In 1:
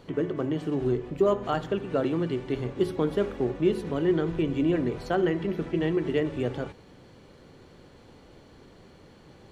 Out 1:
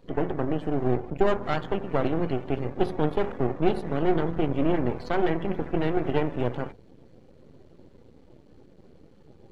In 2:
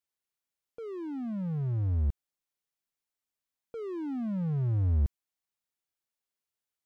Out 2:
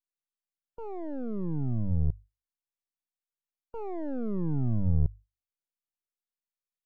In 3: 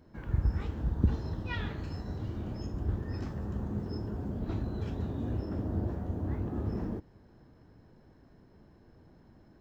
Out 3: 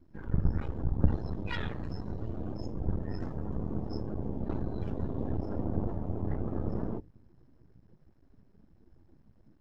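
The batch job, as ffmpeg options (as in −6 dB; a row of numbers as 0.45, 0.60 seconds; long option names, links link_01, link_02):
-af "aeval=exprs='max(val(0),0)':channel_layout=same,bandreject=frequency=50:width_type=h:width=6,bandreject=frequency=100:width_type=h:width=6,afftdn=noise_reduction=13:noise_floor=-52,volume=5dB"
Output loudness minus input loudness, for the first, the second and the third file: 0.0, 0.0, 0.0 LU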